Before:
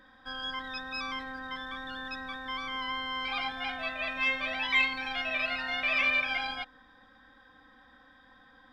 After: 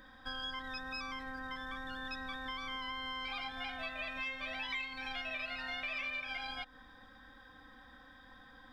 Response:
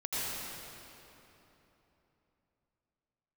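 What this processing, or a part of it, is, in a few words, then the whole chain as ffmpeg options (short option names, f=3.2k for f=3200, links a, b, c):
ASMR close-microphone chain: -filter_complex "[0:a]lowshelf=f=110:g=7.5,acompressor=threshold=-39dB:ratio=6,highshelf=f=6.2k:g=7.5,asettb=1/sr,asplit=3[a][b][c];[a]atrim=end=0.624[d];[b]atrim=start=0.62:end=2.02,asetpts=PTS-STARTPTS,afade=t=in:d=0.004:c=qsin,afade=t=out:st=1.396:d=0.004:c=qsin,equalizer=f=3.7k:w=2.8:g=-5.5[e];[c]atrim=start=2.016[f];[d][e]acrossfade=d=0.004:c1=hsin:c2=qsin[g];[g][f]acrossfade=d=0.004:c1=qsin:c2=hsin"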